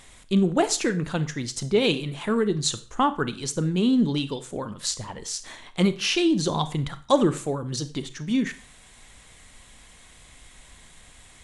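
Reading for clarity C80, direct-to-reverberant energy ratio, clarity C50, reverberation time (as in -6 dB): 19.5 dB, 12.0 dB, 15.0 dB, 0.40 s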